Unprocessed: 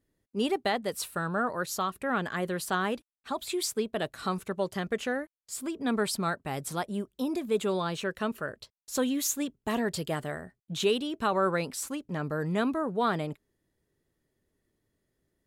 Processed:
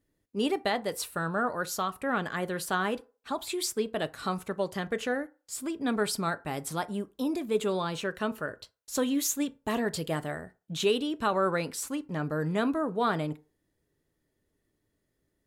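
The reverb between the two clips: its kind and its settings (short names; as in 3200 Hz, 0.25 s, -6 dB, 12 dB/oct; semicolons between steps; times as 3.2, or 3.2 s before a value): FDN reverb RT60 0.35 s, low-frequency decay 0.75×, high-frequency decay 0.55×, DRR 12.5 dB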